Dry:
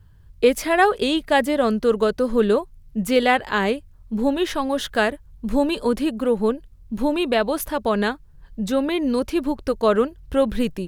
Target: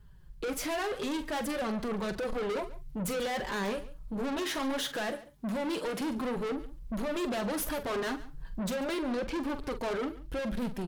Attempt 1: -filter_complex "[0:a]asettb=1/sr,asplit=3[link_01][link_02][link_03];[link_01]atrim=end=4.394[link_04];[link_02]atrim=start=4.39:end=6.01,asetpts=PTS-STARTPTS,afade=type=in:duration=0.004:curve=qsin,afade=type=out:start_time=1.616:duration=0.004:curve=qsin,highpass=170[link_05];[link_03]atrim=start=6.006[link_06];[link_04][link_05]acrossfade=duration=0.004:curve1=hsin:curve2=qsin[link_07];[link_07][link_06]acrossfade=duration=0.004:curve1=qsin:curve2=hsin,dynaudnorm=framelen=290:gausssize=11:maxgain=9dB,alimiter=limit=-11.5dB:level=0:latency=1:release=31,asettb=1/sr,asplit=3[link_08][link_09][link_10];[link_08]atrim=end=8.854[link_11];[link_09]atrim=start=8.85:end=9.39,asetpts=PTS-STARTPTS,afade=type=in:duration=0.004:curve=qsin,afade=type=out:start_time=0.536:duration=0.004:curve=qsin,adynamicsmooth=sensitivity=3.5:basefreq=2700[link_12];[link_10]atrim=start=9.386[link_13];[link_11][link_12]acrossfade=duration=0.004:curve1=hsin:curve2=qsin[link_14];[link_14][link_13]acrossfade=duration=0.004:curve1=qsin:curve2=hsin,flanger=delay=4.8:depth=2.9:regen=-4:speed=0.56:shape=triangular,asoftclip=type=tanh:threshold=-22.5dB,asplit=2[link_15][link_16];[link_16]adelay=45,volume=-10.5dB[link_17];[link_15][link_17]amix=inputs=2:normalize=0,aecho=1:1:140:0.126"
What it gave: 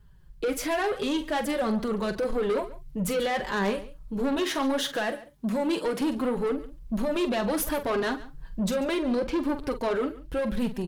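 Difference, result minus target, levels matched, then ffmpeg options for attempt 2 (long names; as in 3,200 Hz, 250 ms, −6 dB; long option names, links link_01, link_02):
soft clipping: distortion −6 dB
-filter_complex "[0:a]asettb=1/sr,asplit=3[link_01][link_02][link_03];[link_01]atrim=end=4.394[link_04];[link_02]atrim=start=4.39:end=6.01,asetpts=PTS-STARTPTS,afade=type=in:duration=0.004:curve=qsin,afade=type=out:start_time=1.616:duration=0.004:curve=qsin,highpass=170[link_05];[link_03]atrim=start=6.006[link_06];[link_04][link_05]acrossfade=duration=0.004:curve1=hsin:curve2=qsin[link_07];[link_07][link_06]acrossfade=duration=0.004:curve1=qsin:curve2=hsin,dynaudnorm=framelen=290:gausssize=11:maxgain=9dB,alimiter=limit=-11.5dB:level=0:latency=1:release=31,asettb=1/sr,asplit=3[link_08][link_09][link_10];[link_08]atrim=end=8.854[link_11];[link_09]atrim=start=8.85:end=9.39,asetpts=PTS-STARTPTS,afade=type=in:duration=0.004:curve=qsin,afade=type=out:start_time=0.536:duration=0.004:curve=qsin,adynamicsmooth=sensitivity=3.5:basefreq=2700[link_12];[link_10]atrim=start=9.386[link_13];[link_11][link_12]acrossfade=duration=0.004:curve1=hsin:curve2=qsin[link_14];[link_14][link_13]acrossfade=duration=0.004:curve1=qsin:curve2=hsin,flanger=delay=4.8:depth=2.9:regen=-4:speed=0.56:shape=triangular,asoftclip=type=tanh:threshold=-31dB,asplit=2[link_15][link_16];[link_16]adelay=45,volume=-10.5dB[link_17];[link_15][link_17]amix=inputs=2:normalize=0,aecho=1:1:140:0.126"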